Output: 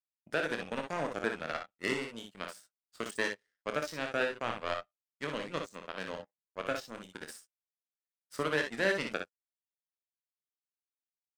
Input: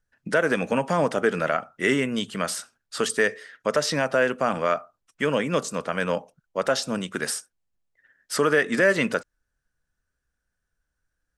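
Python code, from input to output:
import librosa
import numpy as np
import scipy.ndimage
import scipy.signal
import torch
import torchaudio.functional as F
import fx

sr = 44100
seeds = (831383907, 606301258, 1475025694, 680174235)

y = fx.power_curve(x, sr, exponent=2.0)
y = fx.room_early_taps(y, sr, ms=(26, 59, 69), db=(-9.0, -6.0, -11.5))
y = y * librosa.db_to_amplitude(-6.5)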